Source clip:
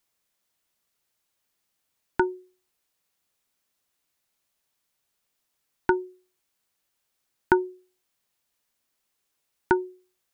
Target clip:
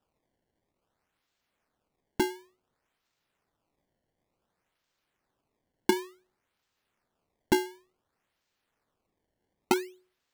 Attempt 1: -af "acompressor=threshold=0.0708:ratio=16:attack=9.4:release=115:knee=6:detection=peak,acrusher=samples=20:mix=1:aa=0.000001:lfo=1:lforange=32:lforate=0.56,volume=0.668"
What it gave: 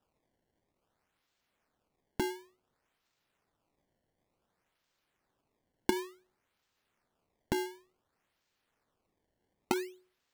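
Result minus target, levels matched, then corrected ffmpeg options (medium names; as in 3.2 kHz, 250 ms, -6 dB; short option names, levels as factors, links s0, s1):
compression: peak gain reduction +10.5 dB
-af "acrusher=samples=20:mix=1:aa=0.000001:lfo=1:lforange=32:lforate=0.56,volume=0.668"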